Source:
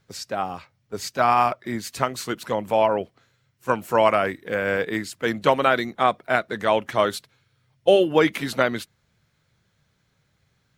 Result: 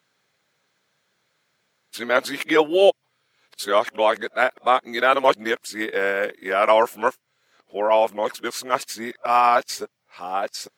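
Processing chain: reverse the whole clip; high-pass 350 Hz 12 dB/octave; trim +2 dB

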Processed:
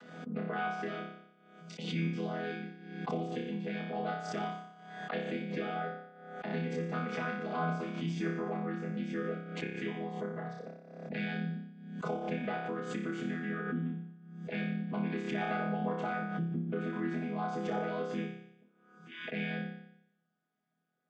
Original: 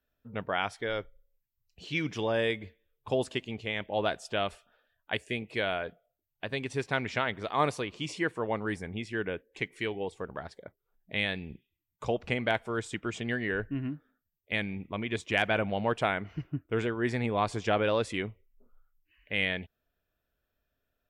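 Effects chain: vocoder on a held chord major triad, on E3; compression 2.5:1, threshold -36 dBFS, peak gain reduction 9 dB; on a send: flutter echo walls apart 5.1 m, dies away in 0.75 s; on the sum: swell ahead of each attack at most 58 dB/s

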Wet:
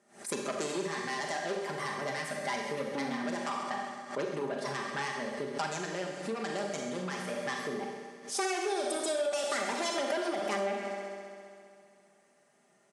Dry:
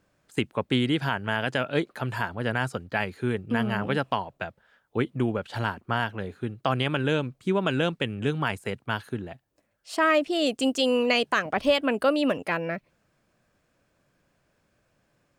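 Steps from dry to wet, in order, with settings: one-sided wavefolder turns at -18 dBFS; peaking EQ 2.8 kHz -8 dB 1.3 oct; tape speed +19%; multi-head delay 66 ms, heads first and second, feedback 75%, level -20 dB; saturation -25.5 dBFS, distortion -10 dB; steep low-pass 9.6 kHz 36 dB/octave; treble shelf 6.2 kHz +10 dB; comb 5 ms, depth 59%; Schroeder reverb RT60 0.87 s, combs from 29 ms, DRR 1.5 dB; compression, threshold -28 dBFS, peak gain reduction 10.5 dB; high-pass 270 Hz 12 dB/octave; swell ahead of each attack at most 140 dB/s

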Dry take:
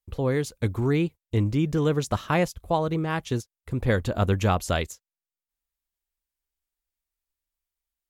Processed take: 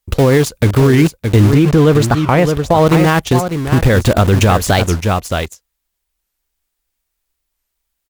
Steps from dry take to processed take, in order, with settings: in parallel at -4 dB: bit crusher 5-bit; 1.52–2.87 s: on the sum: treble shelf 4.4 kHz -8 dB; on a send: delay 617 ms -10.5 dB; on the sum: de-esser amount 45%; loudness maximiser +14.5 dB; warped record 45 rpm, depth 250 cents; trim -1 dB

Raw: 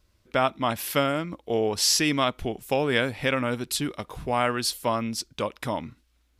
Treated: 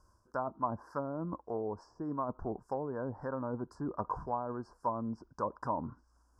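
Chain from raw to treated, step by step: reverse; compression 5:1, threshold -32 dBFS, peak gain reduction 13 dB; reverse; Chebyshev band-stop 1.6–5 kHz, order 4; low-pass that closes with the level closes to 530 Hz, closed at -31 dBFS; Chebyshev low-pass 9.3 kHz, order 2; peaking EQ 1 kHz +13 dB 0.55 oct

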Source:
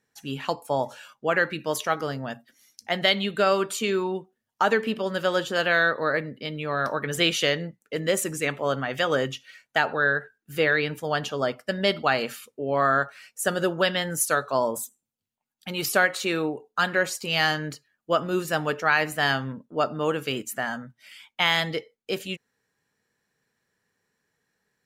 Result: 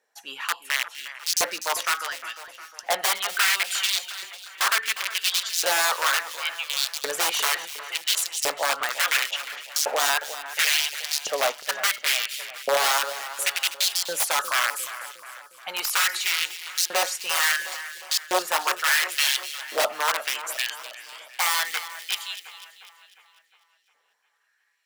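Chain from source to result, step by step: integer overflow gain 18.5 dB; high-pass 130 Hz; hum notches 50/100/150/200 Hz; LFO high-pass saw up 0.71 Hz 550–5900 Hz; on a send: two-band feedback delay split 2.4 kHz, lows 356 ms, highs 248 ms, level -12.5 dB; on the sum: trim +1.5 dB

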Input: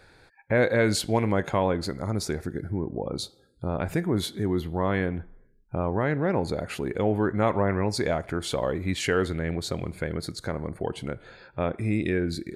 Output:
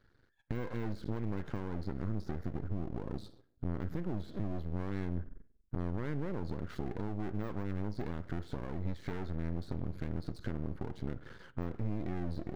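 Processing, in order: single-diode clipper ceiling -22.5 dBFS; gate -52 dBFS, range -12 dB; de-esser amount 100%; tilt shelf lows +7 dB, about 1.4 kHz; compression 6:1, threshold -29 dBFS, peak gain reduction 12 dB; static phaser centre 2.6 kHz, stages 6; half-wave rectifier; on a send: reverberation, pre-delay 34 ms, DRR 18 dB

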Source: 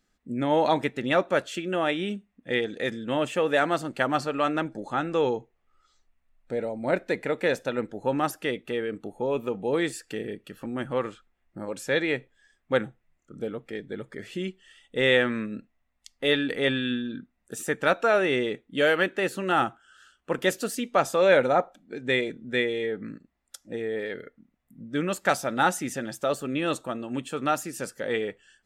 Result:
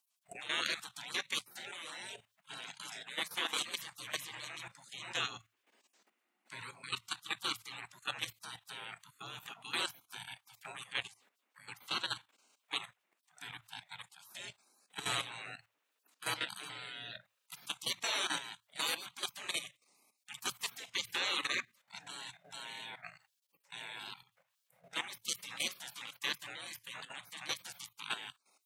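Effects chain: spectral gate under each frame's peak -30 dB weak; frequency shift +110 Hz; level held to a coarse grid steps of 12 dB; trim +13.5 dB

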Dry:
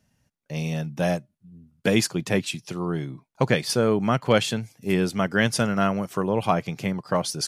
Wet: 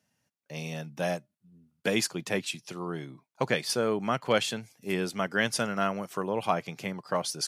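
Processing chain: high-pass 110 Hz; bass shelf 290 Hz -8 dB; trim -3.5 dB

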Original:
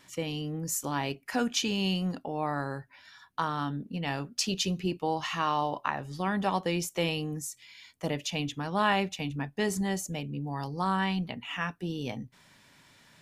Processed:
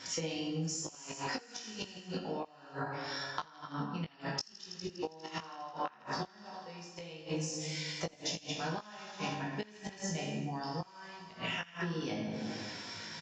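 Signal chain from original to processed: high-pass 67 Hz 6 dB/octave; tone controls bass -3 dB, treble -2 dB; plate-style reverb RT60 1.3 s, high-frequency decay 0.6×, DRR -3.5 dB; inverted gate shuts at -18 dBFS, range -31 dB; peaking EQ 5.3 kHz +12 dB 0.39 oct; band-stop 1.2 kHz, Q 17; feedback echo behind a high-pass 81 ms, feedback 81%, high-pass 1.5 kHz, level -21 dB; compression 12:1, threshold -42 dBFS, peak gain reduction 22 dB; doubling 19 ms -5.5 dB; trim +7 dB; AAC 48 kbps 16 kHz

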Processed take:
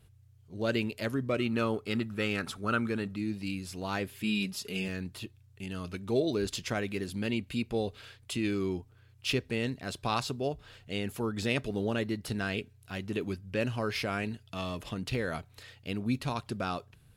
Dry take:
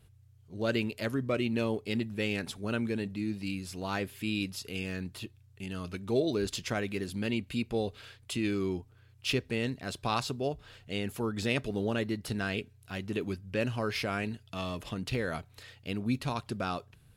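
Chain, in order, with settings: 1.39–3.16 s: peaking EQ 1.3 kHz +14.5 dB 0.41 oct; 4.23–4.88 s: comb 4.9 ms, depth 75%

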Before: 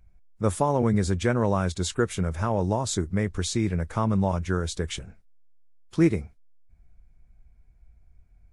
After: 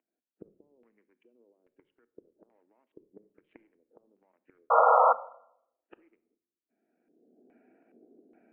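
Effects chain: local Wiener filter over 41 samples; recorder AGC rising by 22 dB/s; Chebyshev band-pass 240–3100 Hz, order 5; treble shelf 2.4 kHz +9 dB; peak limiter -21 dBFS, peak gain reduction 10 dB; inverted gate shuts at -28 dBFS, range -30 dB; LFO low-pass square 1.2 Hz 430–2300 Hz; painted sound noise, 4.70–5.13 s, 460–1400 Hz -11 dBFS; distance through air 300 m; reverberation RT60 0.75 s, pre-delay 6 ms, DRR 13 dB; trim -8 dB

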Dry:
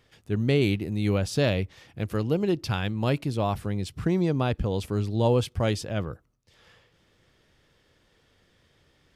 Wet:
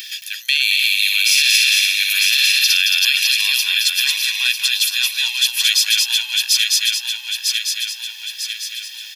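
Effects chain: backward echo that repeats 474 ms, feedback 63%, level -3 dB; compression 1.5:1, threshold -41 dBFS, peak gain reduction 9 dB; tilt EQ +3.5 dB/octave; 0.59–2.77 s: flutter echo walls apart 10.4 m, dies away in 0.88 s; upward compressor, threshold -48 dBFS; inverse Chebyshev high-pass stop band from 390 Hz, stop band 80 dB; peaking EQ 8.3 kHz -11 dB 0.43 oct; comb 1.2 ms, depth 90%; delay 221 ms -4.5 dB; loudness maximiser +25 dB; trim -2.5 dB

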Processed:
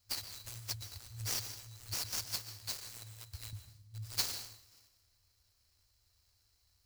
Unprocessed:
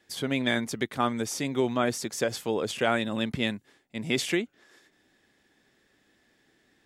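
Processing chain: median filter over 5 samples; FFT band-reject 110–3900 Hz; 2.26–3.53 s: amplifier tone stack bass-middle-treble 10-0-10; plate-style reverb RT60 1.1 s, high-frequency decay 0.55×, pre-delay 110 ms, DRR 8 dB; sampling jitter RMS 0.024 ms; trim +5.5 dB

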